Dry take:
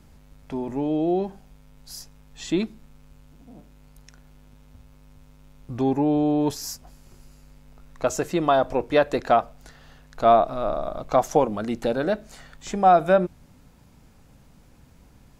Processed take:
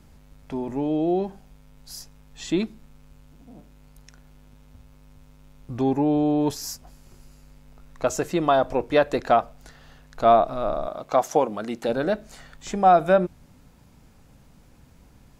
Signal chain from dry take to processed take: 10.87–11.89 HPF 270 Hz 6 dB/oct

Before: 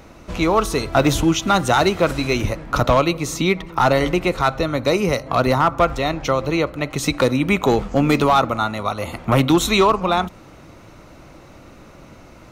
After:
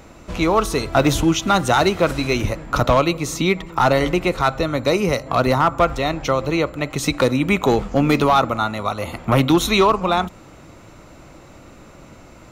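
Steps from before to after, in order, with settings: 7.9–9.92 notch 7700 Hz, Q 5.3; whine 7300 Hz -61 dBFS

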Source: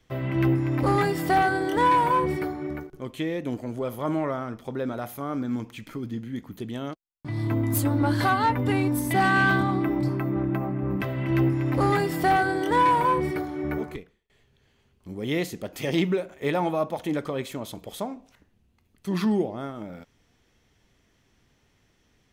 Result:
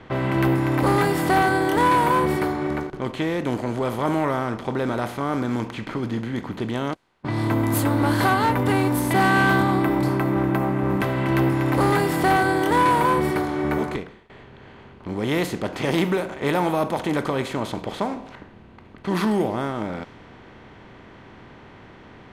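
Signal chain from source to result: per-bin compression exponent 0.6; low-pass opened by the level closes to 2700 Hz, open at -17 dBFS

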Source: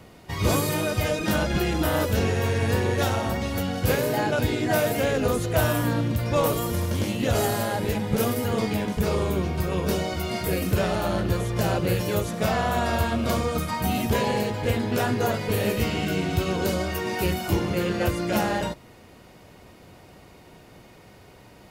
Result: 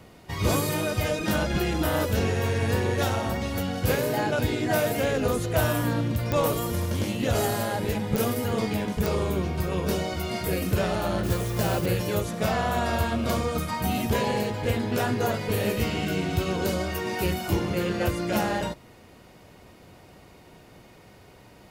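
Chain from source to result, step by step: 11.23–11.86 modulation noise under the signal 15 dB; pops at 6.32/8.16/9.06, -11 dBFS; gain -1.5 dB

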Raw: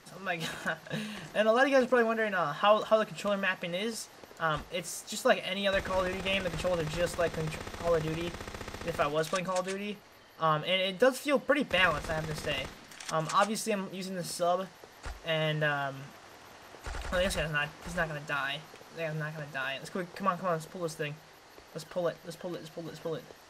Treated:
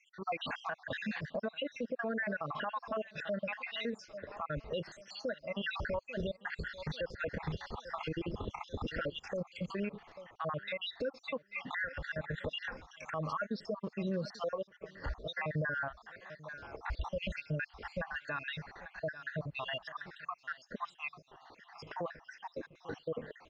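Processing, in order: random spectral dropouts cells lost 66%; feedback echo 0.841 s, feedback 38%, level -22.5 dB; compressor 6:1, threshold -37 dBFS, peak gain reduction 16 dB; spectral noise reduction 7 dB; limiter -36 dBFS, peak gain reduction 10.5 dB; Bessel low-pass 3000 Hz, order 8; gain +8.5 dB

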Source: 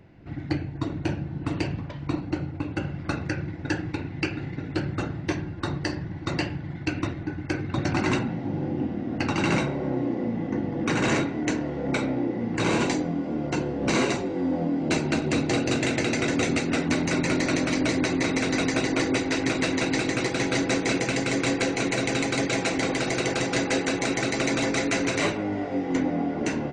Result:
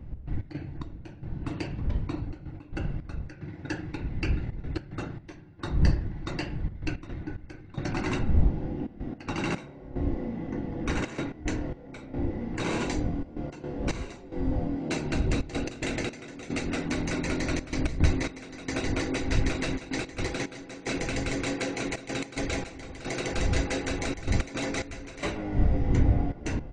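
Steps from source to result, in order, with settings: wind noise 82 Hz -24 dBFS; step gate "x.x.xx...xxxxxxx" 110 bpm -12 dB; gain -6 dB

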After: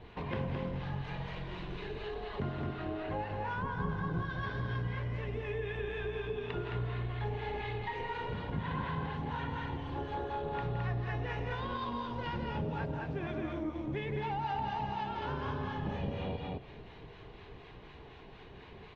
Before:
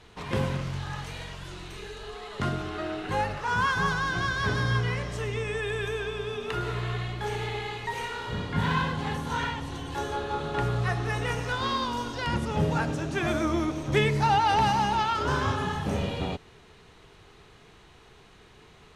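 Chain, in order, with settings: Bessel low-pass 2600 Hz, order 4; bell 1500 Hz -2.5 dB 0.68 oct; frequency-shifting echo 0.117 s, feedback 59%, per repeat -35 Hz, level -19 dB; harmonic tremolo 4.1 Hz, depth 50%, crossover 800 Hz; notch 1300 Hz, Q 8.5; vocal rider within 5 dB 2 s; loudspeakers at several distances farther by 57 m -9 dB, 74 m -3 dB; compressor 2.5:1, threshold -39 dBFS, peak gain reduction 13 dB; 3.62–4.3 tilt shelf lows +7 dB, about 710 Hz; gain +1.5 dB; Opus 32 kbps 48000 Hz

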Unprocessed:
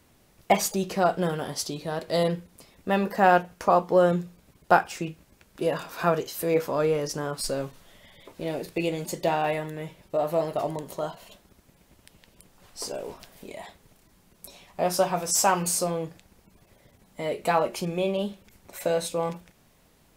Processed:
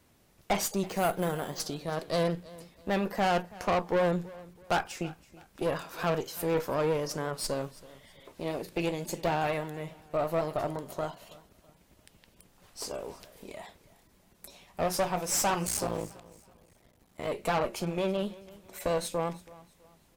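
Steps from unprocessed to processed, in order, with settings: 15.67–17.27 cycle switcher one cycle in 3, muted; tube stage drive 22 dB, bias 0.7; 0.86–1.6 careless resampling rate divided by 4×, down filtered, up hold; on a send: feedback echo 0.328 s, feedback 35%, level -20.5 dB; on the sum: vibrato 8 Hz 35 cents

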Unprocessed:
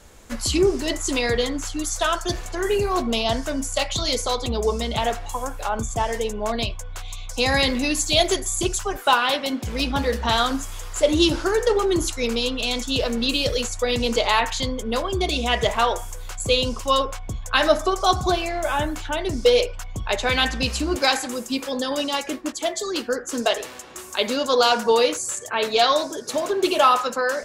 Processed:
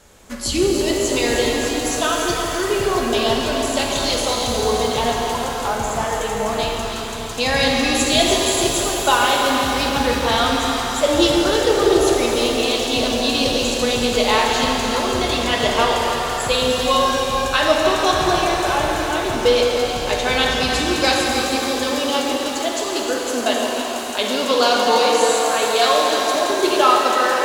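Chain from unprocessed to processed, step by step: low shelf 77 Hz -7.5 dB; echo with dull and thin repeats by turns 0.153 s, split 880 Hz, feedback 59%, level -4.5 dB; shimmer reverb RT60 3.9 s, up +7 st, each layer -8 dB, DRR -0.5 dB

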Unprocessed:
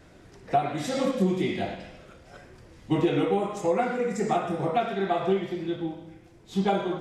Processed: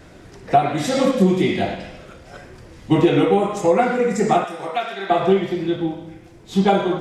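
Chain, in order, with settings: 4.44–5.1 HPF 1400 Hz 6 dB/oct; gain +8.5 dB

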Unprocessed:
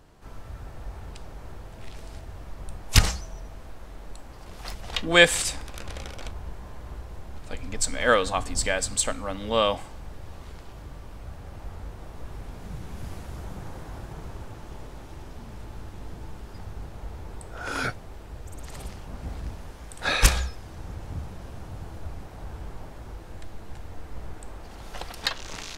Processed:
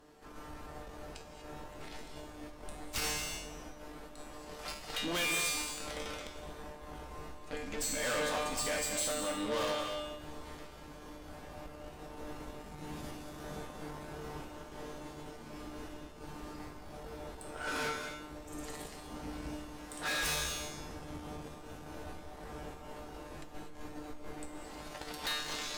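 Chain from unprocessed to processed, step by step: resonant low shelf 180 Hz -7.5 dB, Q 1.5; resonator 150 Hz, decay 0.65 s, harmonics all, mix 90%; tube stage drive 46 dB, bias 0.55; non-linear reverb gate 0.27 s rising, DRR 6 dB; gain +13.5 dB

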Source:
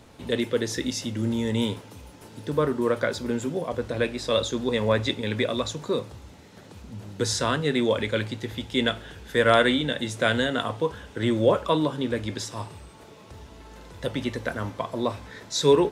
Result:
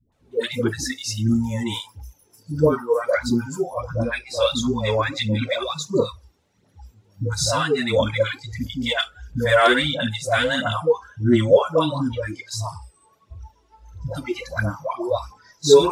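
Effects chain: dispersion highs, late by 0.123 s, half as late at 560 Hz; phaser 1.5 Hz, delay 2.9 ms, feedback 52%; spectral noise reduction 21 dB; gain +3 dB

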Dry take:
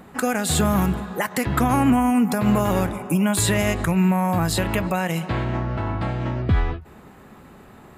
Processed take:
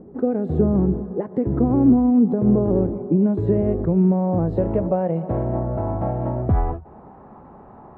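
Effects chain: low-pass sweep 410 Hz -> 880 Hz, 3.54–7.3

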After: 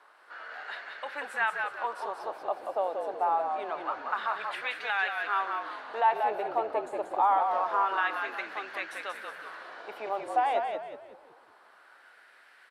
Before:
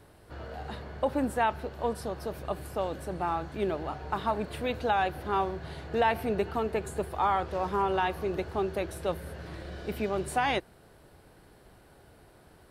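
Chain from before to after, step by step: HPF 420 Hz 12 dB/oct; high shelf 2000 Hz +10 dB; in parallel at 0 dB: limiter -22.5 dBFS, peak gain reduction 11 dB; on the sum: LFO band-pass sine 0.26 Hz 710–1800 Hz; on a send: frequency-shifting echo 0.184 s, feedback 37%, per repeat -56 Hz, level -5 dB

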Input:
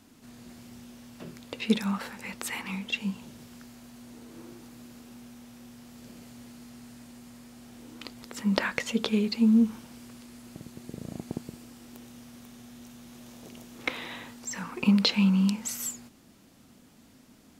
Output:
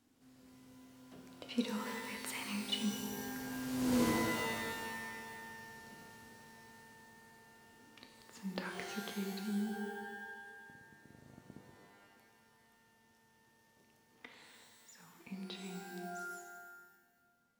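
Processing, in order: Doppler pass-by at 4, 24 m/s, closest 2.9 m; shimmer reverb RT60 1.5 s, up +12 st, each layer -2 dB, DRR 4 dB; gain +14.5 dB

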